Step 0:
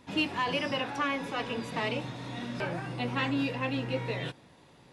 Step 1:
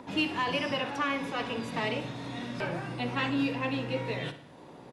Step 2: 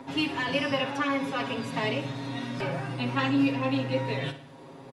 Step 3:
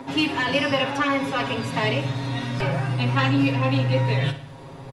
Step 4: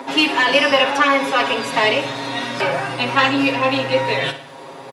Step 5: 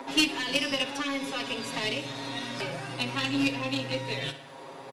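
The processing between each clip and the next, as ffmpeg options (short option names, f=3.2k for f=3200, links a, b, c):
-filter_complex "[0:a]acrossover=split=180|1200|2000[a][b][c][d];[b]acompressor=mode=upward:threshold=-39dB:ratio=2.5[e];[a][e][c][d]amix=inputs=4:normalize=0,asplit=2[f][g];[g]adelay=61,lowpass=f=4.4k:p=1,volume=-11dB,asplit=2[h][i];[i]adelay=61,lowpass=f=4.4k:p=1,volume=0.53,asplit=2[j][k];[k]adelay=61,lowpass=f=4.4k:p=1,volume=0.53,asplit=2[l][m];[m]adelay=61,lowpass=f=4.4k:p=1,volume=0.53,asplit=2[n][o];[o]adelay=61,lowpass=f=4.4k:p=1,volume=0.53,asplit=2[p][q];[q]adelay=61,lowpass=f=4.4k:p=1,volume=0.53[r];[f][h][j][l][n][p][r]amix=inputs=7:normalize=0"
-af "aecho=1:1:7.4:0.9"
-af "asubboost=boost=7.5:cutoff=97,asoftclip=type=tanh:threshold=-15dB,volume=6.5dB"
-af "highpass=380,volume=8.5dB"
-filter_complex "[0:a]acrossover=split=330|3000[a][b][c];[b]acompressor=threshold=-30dB:ratio=6[d];[a][d][c]amix=inputs=3:normalize=0,aeval=exprs='0.398*(cos(1*acos(clip(val(0)/0.398,-1,1)))-cos(1*PI/2))+0.0794*(cos(3*acos(clip(val(0)/0.398,-1,1)))-cos(3*PI/2))+0.00316*(cos(6*acos(clip(val(0)/0.398,-1,1)))-cos(6*PI/2))':c=same"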